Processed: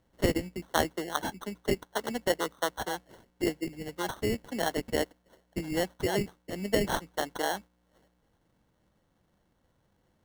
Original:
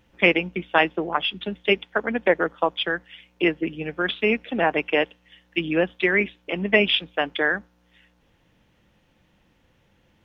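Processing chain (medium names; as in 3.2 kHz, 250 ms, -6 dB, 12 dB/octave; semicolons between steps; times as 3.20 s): sample-and-hold 18×; trim -8.5 dB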